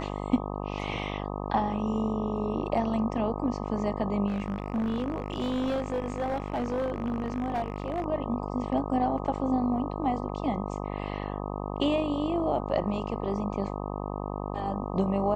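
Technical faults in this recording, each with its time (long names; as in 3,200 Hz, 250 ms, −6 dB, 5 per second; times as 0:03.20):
mains buzz 50 Hz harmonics 25 −34 dBFS
0:04.27–0:08.06: clipping −25 dBFS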